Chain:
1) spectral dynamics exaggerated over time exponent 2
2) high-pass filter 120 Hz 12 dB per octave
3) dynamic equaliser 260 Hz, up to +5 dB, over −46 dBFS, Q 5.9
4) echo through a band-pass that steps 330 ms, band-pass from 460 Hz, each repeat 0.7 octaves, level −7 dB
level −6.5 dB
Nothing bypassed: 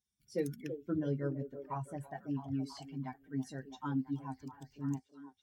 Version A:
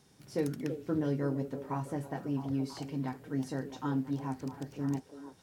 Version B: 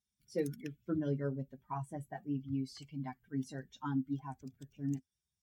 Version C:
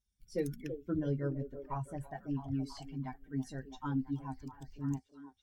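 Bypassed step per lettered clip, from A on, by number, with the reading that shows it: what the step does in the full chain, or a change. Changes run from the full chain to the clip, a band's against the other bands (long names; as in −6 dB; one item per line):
1, change in integrated loudness +4.0 LU
4, echo-to-direct ratio −11.0 dB to none audible
2, 125 Hz band +2.0 dB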